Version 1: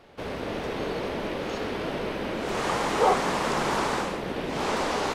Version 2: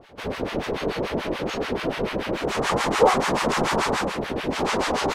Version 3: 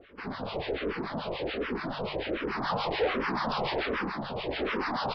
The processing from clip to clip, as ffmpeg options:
-filter_complex "[0:a]acrossover=split=920[a][b];[a]aeval=exprs='val(0)*(1-1/2+1/2*cos(2*PI*6.9*n/s))':c=same[c];[b]aeval=exprs='val(0)*(1-1/2-1/2*cos(2*PI*6.9*n/s))':c=same[d];[c][d]amix=inputs=2:normalize=0,volume=8.5dB"
-filter_complex "[0:a]bandreject=f=50:t=h:w=6,bandreject=f=100:t=h:w=6,bandreject=f=150:t=h:w=6,aresample=11025,asoftclip=type=tanh:threshold=-19dB,aresample=44100,asplit=2[a][b];[b]afreqshift=-1.3[c];[a][c]amix=inputs=2:normalize=1,volume=-2dB"

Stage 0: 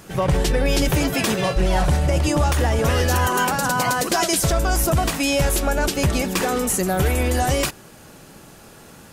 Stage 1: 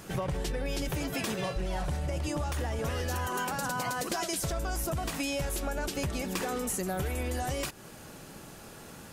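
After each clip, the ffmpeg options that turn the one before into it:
-af "acompressor=threshold=-27dB:ratio=6,volume=-3dB"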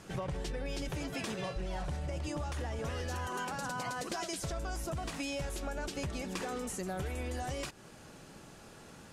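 -af "lowpass=8.7k,volume=-5dB"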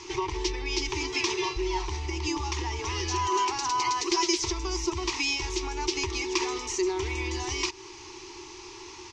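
-af "firequalizer=gain_entry='entry(100,0);entry(180,-29);entry(360,15);entry(560,-26);entry(930,13);entry(1500,-9);entry(2100,10);entry(3300,7);entry(5900,14);entry(9900,-22)':delay=0.05:min_phase=1,volume=4.5dB"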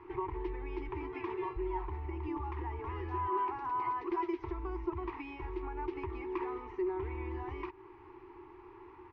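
-af "lowpass=f=1.7k:w=0.5412,lowpass=f=1.7k:w=1.3066,volume=-6.5dB"

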